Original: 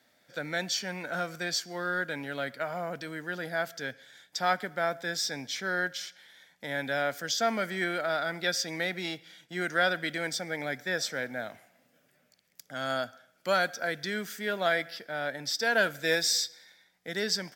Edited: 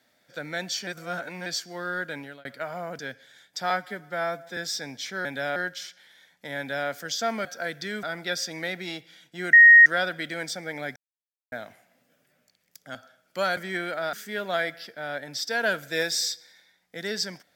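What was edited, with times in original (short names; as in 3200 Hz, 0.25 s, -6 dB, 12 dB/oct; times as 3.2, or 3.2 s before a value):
0.87–1.46 reverse
2.18–2.45 fade out
2.99–3.78 cut
4.49–5.07 stretch 1.5×
6.77–7.08 copy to 5.75
7.64–8.2 swap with 13.67–14.25
9.7 add tone 1870 Hz -8 dBFS 0.33 s
10.8–11.36 mute
12.79–13.05 cut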